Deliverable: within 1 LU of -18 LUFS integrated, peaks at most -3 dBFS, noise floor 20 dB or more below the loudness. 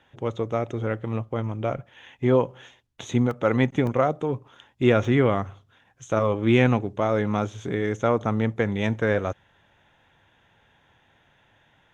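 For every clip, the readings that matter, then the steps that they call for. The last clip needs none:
dropouts 3; longest dropout 1.5 ms; loudness -24.5 LUFS; peak -5.5 dBFS; loudness target -18.0 LUFS
-> interpolate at 3.31/3.87/5.05, 1.5 ms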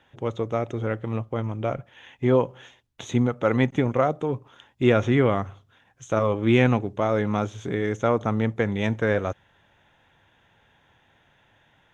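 dropouts 0; loudness -24.5 LUFS; peak -5.5 dBFS; loudness target -18.0 LUFS
-> gain +6.5 dB; limiter -3 dBFS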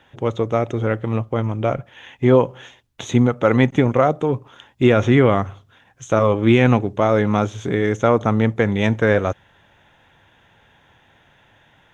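loudness -18.5 LUFS; peak -3.0 dBFS; noise floor -56 dBFS

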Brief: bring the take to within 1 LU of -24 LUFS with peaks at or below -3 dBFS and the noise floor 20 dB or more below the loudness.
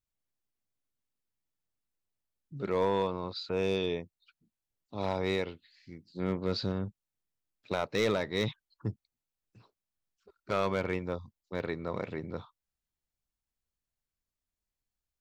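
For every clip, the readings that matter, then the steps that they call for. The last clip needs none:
clipped 0.2%; flat tops at -21.0 dBFS; loudness -33.5 LUFS; peak -21.0 dBFS; loudness target -24.0 LUFS
-> clip repair -21 dBFS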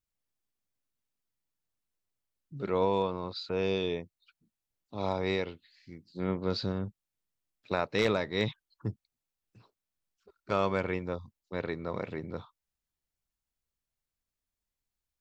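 clipped 0.0%; loudness -33.0 LUFS; peak -12.5 dBFS; loudness target -24.0 LUFS
-> gain +9 dB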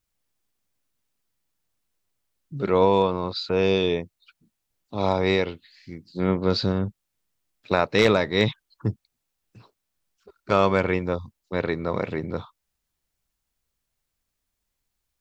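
loudness -24.0 LUFS; peak -3.5 dBFS; noise floor -80 dBFS

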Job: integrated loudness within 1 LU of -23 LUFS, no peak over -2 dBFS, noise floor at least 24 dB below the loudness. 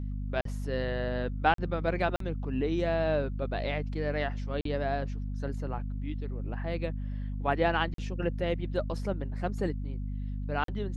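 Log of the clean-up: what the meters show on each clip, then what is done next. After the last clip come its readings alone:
dropouts 6; longest dropout 43 ms; hum 50 Hz; harmonics up to 250 Hz; hum level -32 dBFS; loudness -32.0 LUFS; peak -10.0 dBFS; loudness target -23.0 LUFS
-> interpolate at 0.41/1.54/2.16/4.61/7.94/10.64, 43 ms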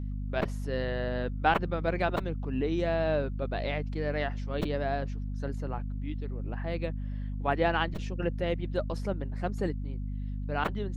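dropouts 0; hum 50 Hz; harmonics up to 250 Hz; hum level -32 dBFS
-> de-hum 50 Hz, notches 5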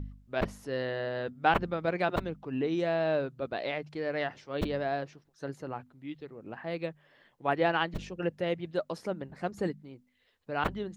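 hum none; loudness -33.0 LUFS; peak -10.5 dBFS; loudness target -23.0 LUFS
-> gain +10 dB; limiter -2 dBFS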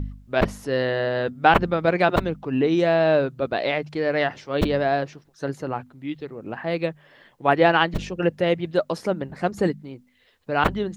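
loudness -23.0 LUFS; peak -2.0 dBFS; noise floor -60 dBFS

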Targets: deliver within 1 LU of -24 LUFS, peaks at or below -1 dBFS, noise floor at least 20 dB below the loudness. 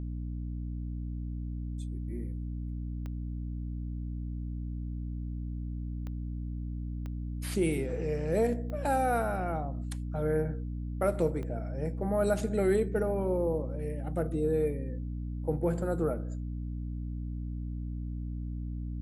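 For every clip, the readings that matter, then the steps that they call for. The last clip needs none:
clicks 5; hum 60 Hz; harmonics up to 300 Hz; hum level -33 dBFS; loudness -33.5 LUFS; peak -15.0 dBFS; loudness target -24.0 LUFS
-> de-click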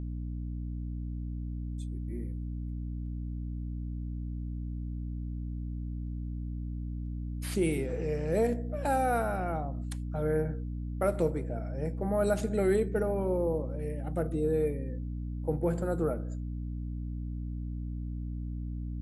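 clicks 0; hum 60 Hz; harmonics up to 300 Hz; hum level -33 dBFS
-> de-hum 60 Hz, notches 5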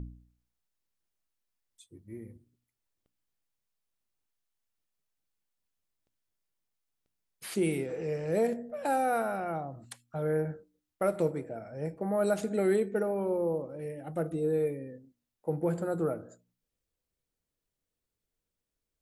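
hum none; loudness -32.0 LUFS; peak -16.5 dBFS; loudness target -24.0 LUFS
-> gain +8 dB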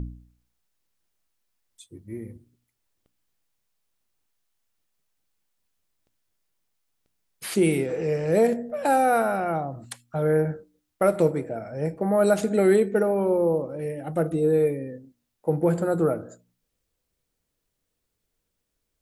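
loudness -24.0 LUFS; peak -8.5 dBFS; noise floor -79 dBFS

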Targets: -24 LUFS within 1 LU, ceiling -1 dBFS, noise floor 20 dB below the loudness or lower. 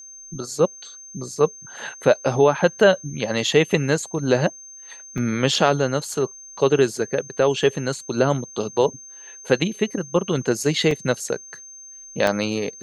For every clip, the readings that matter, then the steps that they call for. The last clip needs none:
dropouts 3; longest dropout 2.2 ms; steady tone 6300 Hz; tone level -39 dBFS; loudness -21.5 LUFS; peak -4.0 dBFS; loudness target -24.0 LUFS
-> interpolate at 5.18/10.91/12.27, 2.2 ms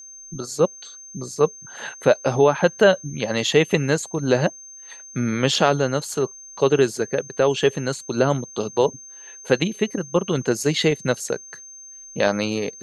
dropouts 0; steady tone 6300 Hz; tone level -39 dBFS
-> notch 6300 Hz, Q 30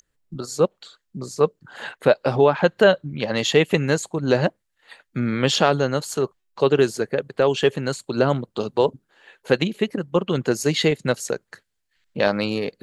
steady tone none; loudness -21.5 LUFS; peak -4.0 dBFS; loudness target -24.0 LUFS
-> gain -2.5 dB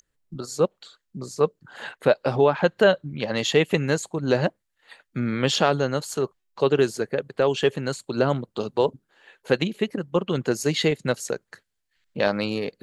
loudness -24.0 LUFS; peak -6.5 dBFS; noise floor -78 dBFS

